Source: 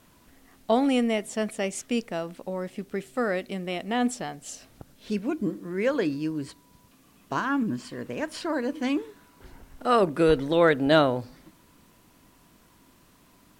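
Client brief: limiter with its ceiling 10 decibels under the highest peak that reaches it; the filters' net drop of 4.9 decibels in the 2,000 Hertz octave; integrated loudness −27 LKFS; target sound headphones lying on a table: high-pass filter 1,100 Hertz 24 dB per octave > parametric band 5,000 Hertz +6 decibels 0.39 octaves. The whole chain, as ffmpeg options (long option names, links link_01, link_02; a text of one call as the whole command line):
ffmpeg -i in.wav -af "equalizer=frequency=2000:width_type=o:gain=-6.5,alimiter=limit=-19dB:level=0:latency=1,highpass=frequency=1100:width=0.5412,highpass=frequency=1100:width=1.3066,equalizer=frequency=5000:width_type=o:width=0.39:gain=6,volume=13.5dB" out.wav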